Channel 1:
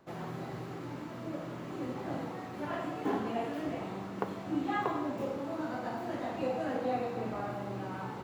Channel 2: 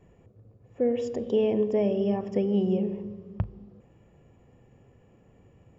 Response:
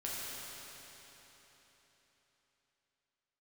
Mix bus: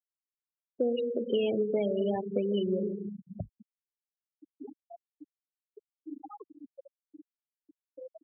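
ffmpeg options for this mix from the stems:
-filter_complex "[0:a]lowpass=f=5300:w=0.5412,lowpass=f=5300:w=1.3066,adelay=1550,volume=0.422[s0];[1:a]equalizer=f=3900:w=0.52:g=14,volume=1.12[s1];[s0][s1]amix=inputs=2:normalize=0,afftfilt=real='re*gte(hypot(re,im),0.0891)':imag='im*gte(hypot(re,im),0.0891)':win_size=1024:overlap=0.75,acrossover=split=150|320[s2][s3][s4];[s2]acompressor=threshold=0.00631:ratio=4[s5];[s3]acompressor=threshold=0.0126:ratio=4[s6];[s4]acompressor=threshold=0.0398:ratio=4[s7];[s5][s6][s7]amix=inputs=3:normalize=0"

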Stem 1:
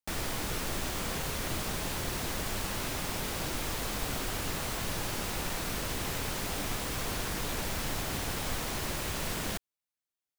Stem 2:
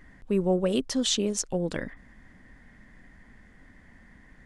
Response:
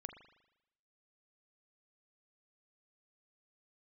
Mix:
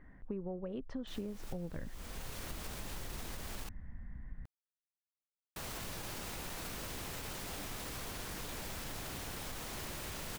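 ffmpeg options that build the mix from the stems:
-filter_complex "[0:a]acrusher=bits=5:mix=0:aa=0.5,alimiter=level_in=1.88:limit=0.0631:level=0:latency=1:release=65,volume=0.531,adelay=1000,volume=0.668,asplit=3[s0][s1][s2];[s0]atrim=end=3.69,asetpts=PTS-STARTPTS,afade=t=out:st=3.686:d=0.004:c=hsin[s3];[s1]atrim=start=3.69:end=5.56,asetpts=PTS-STARTPTS,volume=0[s4];[s2]atrim=start=5.56,asetpts=PTS-STARTPTS,afade=t=in:d=0.004:c=hsin[s5];[s3][s4][s5]concat=n=3:v=0:a=1[s6];[1:a]lowpass=1500,asubboost=boost=7.5:cutoff=140,volume=0.596,asplit=2[s7][s8];[s8]apad=whole_len=502152[s9];[s6][s9]sidechaincompress=threshold=0.00891:ratio=4:attack=40:release=626[s10];[s10][s7]amix=inputs=2:normalize=0,acompressor=threshold=0.0141:ratio=10"

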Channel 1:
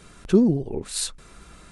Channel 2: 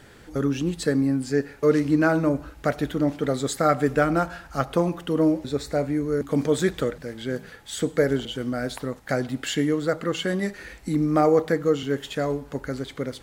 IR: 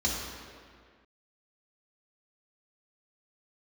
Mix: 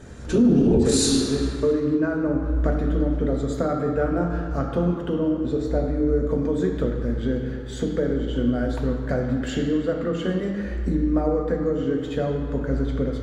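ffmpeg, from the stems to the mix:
-filter_complex "[0:a]alimiter=limit=0.133:level=0:latency=1:release=172,dynaudnorm=f=110:g=7:m=5.01,volume=0.473,asplit=2[s0][s1];[s1]volume=0.596[s2];[1:a]lowpass=f=1800:p=1,lowshelf=f=160:g=8,acompressor=threshold=0.0562:ratio=6,volume=1.06,asplit=2[s3][s4];[s4]volume=0.376[s5];[2:a]atrim=start_sample=2205[s6];[s2][s5]amix=inputs=2:normalize=0[s7];[s7][s6]afir=irnorm=-1:irlink=0[s8];[s0][s3][s8]amix=inputs=3:normalize=0,alimiter=limit=0.316:level=0:latency=1:release=48"

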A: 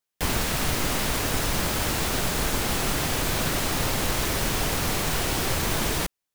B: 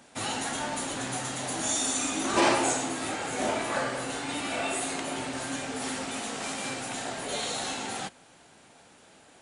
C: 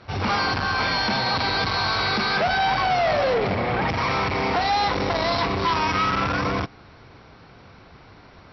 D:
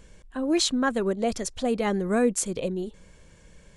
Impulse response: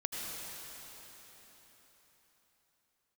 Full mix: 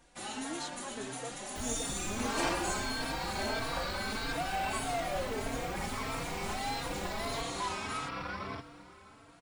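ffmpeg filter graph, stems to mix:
-filter_complex "[0:a]acrossover=split=240[s0][s1];[s1]acompressor=threshold=0.0178:ratio=4[s2];[s0][s2]amix=inputs=2:normalize=0,equalizer=f=9300:t=o:w=0.39:g=-12.5,adelay=1350,volume=0.251,asplit=2[s3][s4];[s4]volume=0.266[s5];[1:a]volume=0.501[s6];[2:a]adelay=1950,volume=0.2,asplit=2[s7][s8];[s8]volume=0.211[s9];[3:a]volume=0.168[s10];[4:a]atrim=start_sample=2205[s11];[s5][s9]amix=inputs=2:normalize=0[s12];[s12][s11]afir=irnorm=-1:irlink=0[s13];[s3][s6][s7][s10][s13]amix=inputs=5:normalize=0,equalizer=f=110:w=3.3:g=-6,asplit=2[s14][s15];[s15]adelay=3.8,afreqshift=1.6[s16];[s14][s16]amix=inputs=2:normalize=1"

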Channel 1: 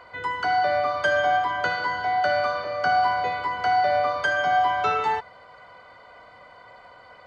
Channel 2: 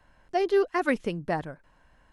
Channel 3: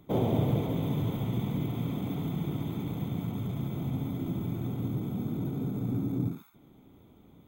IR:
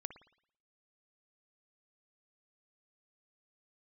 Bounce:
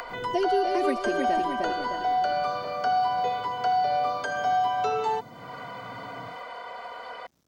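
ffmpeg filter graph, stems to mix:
-filter_complex "[0:a]bass=f=250:g=-14,treble=f=4000:g=-1,aecho=1:1:4.3:0.5,acompressor=mode=upward:threshold=0.0282:ratio=2.5,volume=1.26[s0];[1:a]aecho=1:1:3.2:0.95,volume=1,asplit=3[s1][s2][s3];[s2]volume=0.562[s4];[2:a]acrusher=bits=8:mix=0:aa=0.000001,equalizer=f=5900:w=1.4:g=12,volume=0.141[s5];[s3]apad=whole_len=329696[s6];[s5][s6]sidechaincompress=threshold=0.0224:ratio=8:attack=16:release=1090[s7];[s4]aecho=0:1:307|614|921|1228|1535|1842:1|0.42|0.176|0.0741|0.0311|0.0131[s8];[s0][s1][s7][s8]amix=inputs=4:normalize=0,acrossover=split=290|780|3000[s9][s10][s11][s12];[s9]acompressor=threshold=0.0158:ratio=4[s13];[s10]acompressor=threshold=0.0631:ratio=4[s14];[s11]acompressor=threshold=0.0112:ratio=4[s15];[s12]acompressor=threshold=0.00891:ratio=4[s16];[s13][s14][s15][s16]amix=inputs=4:normalize=0"

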